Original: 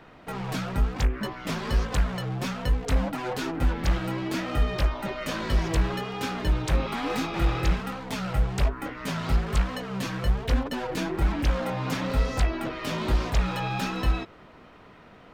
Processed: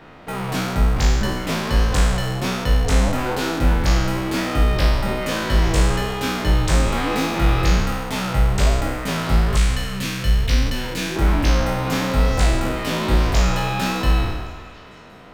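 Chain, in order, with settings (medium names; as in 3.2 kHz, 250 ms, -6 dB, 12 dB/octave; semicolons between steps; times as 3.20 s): spectral sustain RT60 1.25 s; 9.57–11.16 s: FFT filter 110 Hz 0 dB, 840 Hz -10 dB, 2.3 kHz +1 dB; repeats whose band climbs or falls 186 ms, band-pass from 590 Hz, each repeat 0.7 oct, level -11 dB; trim +4.5 dB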